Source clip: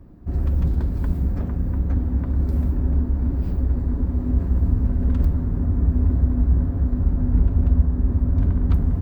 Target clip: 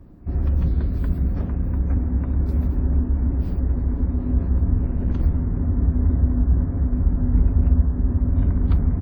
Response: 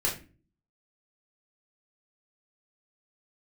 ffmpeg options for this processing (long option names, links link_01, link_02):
-filter_complex "[0:a]asettb=1/sr,asplit=3[link_01][link_02][link_03];[link_01]atrim=end=0.644[link_04];[link_02]atrim=start=0.64:end=1.32,asetpts=PTS-STARTPTS,afade=type=in:duration=0.004:curve=qsin,afade=type=out:start_time=0.676:duration=0.004:curve=qsin,bandreject=frequency=880:width=5.6[link_05];[link_03]atrim=start=1.316[link_06];[link_04][link_05]acrossfade=duration=0.004:curve1=hsin:curve2=qsin[link_07];[link_07][link_06]acrossfade=duration=0.004:curve1=qsin:curve2=hsin,asettb=1/sr,asplit=3[link_08][link_09][link_10];[link_08]atrim=end=4.834[link_11];[link_09]atrim=start=4.83:end=5.25,asetpts=PTS-STARTPTS,afade=type=in:duration=0.004:curve=qsin,afade=type=out:start_time=0.416:duration=0.004:curve=qsin,aeval=exprs='clip(val(0),-1,0.075)':channel_layout=same[link_12];[link_10]atrim=start=5.246[link_13];[link_11][link_12]acrossfade=duration=0.004:curve1=hsin:curve2=qsin[link_14];[link_14][link_13]acrossfade=duration=0.004:curve1=qsin:curve2=hsin,aecho=1:1:137:0.188" -ar 44100 -c:a wmav2 -b:a 128k